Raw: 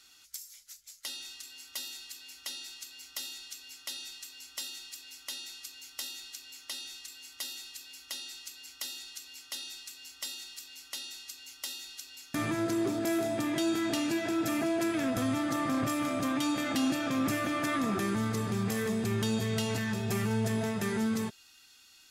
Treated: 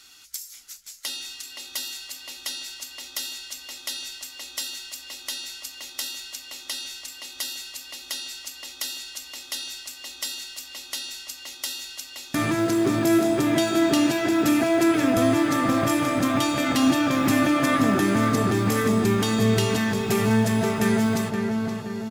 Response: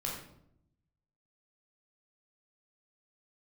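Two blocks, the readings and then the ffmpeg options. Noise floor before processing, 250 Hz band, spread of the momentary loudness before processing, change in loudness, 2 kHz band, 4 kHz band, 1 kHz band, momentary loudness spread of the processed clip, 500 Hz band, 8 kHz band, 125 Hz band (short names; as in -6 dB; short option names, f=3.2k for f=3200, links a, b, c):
-58 dBFS, +9.5 dB, 14 LU, +9.5 dB, +9.0 dB, +8.5 dB, +10.0 dB, 15 LU, +10.0 dB, +8.0 dB, +8.5 dB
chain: -filter_complex "[0:a]acrusher=bits=8:mode=log:mix=0:aa=0.000001,asplit=2[a][b];[b]adelay=522,lowpass=f=2k:p=1,volume=-3.5dB,asplit=2[c][d];[d]adelay=522,lowpass=f=2k:p=1,volume=0.54,asplit=2[e][f];[f]adelay=522,lowpass=f=2k:p=1,volume=0.54,asplit=2[g][h];[h]adelay=522,lowpass=f=2k:p=1,volume=0.54,asplit=2[i][j];[j]adelay=522,lowpass=f=2k:p=1,volume=0.54,asplit=2[k][l];[l]adelay=522,lowpass=f=2k:p=1,volume=0.54,asplit=2[m][n];[n]adelay=522,lowpass=f=2k:p=1,volume=0.54[o];[a][c][e][g][i][k][m][o]amix=inputs=8:normalize=0,volume=8dB"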